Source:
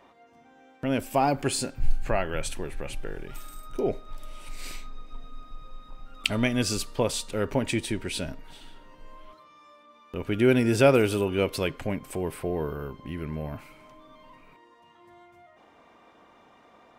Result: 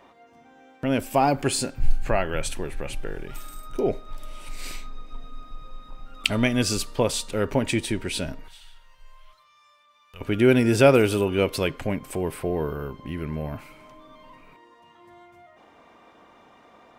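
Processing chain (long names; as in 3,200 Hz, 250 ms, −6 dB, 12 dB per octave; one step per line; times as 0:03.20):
0:08.48–0:10.21: guitar amp tone stack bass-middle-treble 10-0-10
level +3 dB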